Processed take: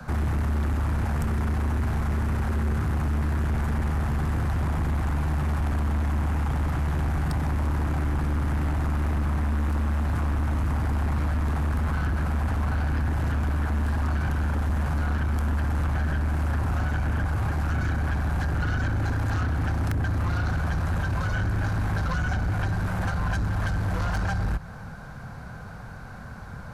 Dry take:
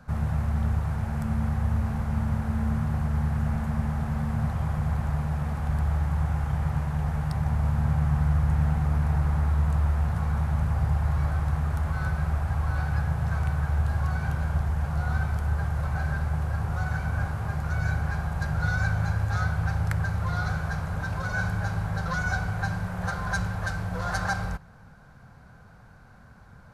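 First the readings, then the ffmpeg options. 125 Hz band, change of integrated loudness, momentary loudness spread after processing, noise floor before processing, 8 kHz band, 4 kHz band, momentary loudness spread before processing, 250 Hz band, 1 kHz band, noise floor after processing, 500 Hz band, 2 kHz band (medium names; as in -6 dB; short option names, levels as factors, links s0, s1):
+0.5 dB, +1.0 dB, 1 LU, -51 dBFS, no reading, +2.5 dB, 5 LU, +1.5 dB, +1.0 dB, -39 dBFS, +3.0 dB, -0.5 dB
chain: -filter_complex "[0:a]acrossover=split=95|210|860[s0][s1][s2][s3];[s0]acompressor=threshold=0.0316:ratio=4[s4];[s1]acompressor=threshold=0.00708:ratio=4[s5];[s2]acompressor=threshold=0.00398:ratio=4[s6];[s3]acompressor=threshold=0.00631:ratio=4[s7];[s4][s5][s6][s7]amix=inputs=4:normalize=0,asplit=2[s8][s9];[s9]aeval=exprs='0.1*sin(PI/2*3.55*val(0)/0.1)':c=same,volume=0.501[s10];[s8][s10]amix=inputs=2:normalize=0"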